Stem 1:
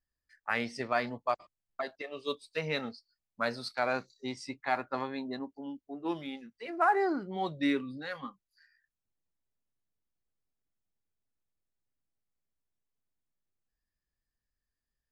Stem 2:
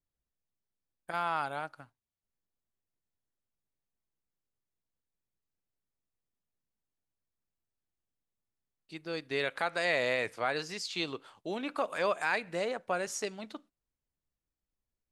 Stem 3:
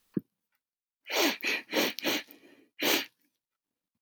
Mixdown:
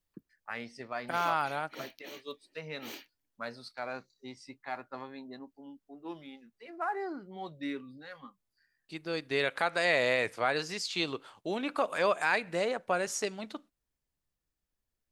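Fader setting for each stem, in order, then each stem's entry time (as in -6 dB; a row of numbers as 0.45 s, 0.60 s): -8.0 dB, +2.5 dB, -18.5 dB; 0.00 s, 0.00 s, 0.00 s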